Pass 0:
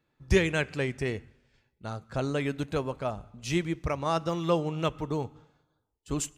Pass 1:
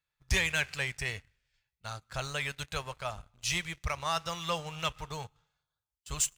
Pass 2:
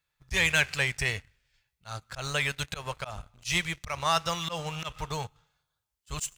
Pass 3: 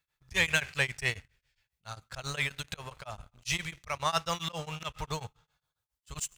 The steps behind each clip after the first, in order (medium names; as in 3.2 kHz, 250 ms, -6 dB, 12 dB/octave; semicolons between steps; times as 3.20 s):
amplifier tone stack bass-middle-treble 10-0-10; waveshaping leveller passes 2
slow attack 124 ms; trim +6 dB
tremolo of two beating tones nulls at 7.4 Hz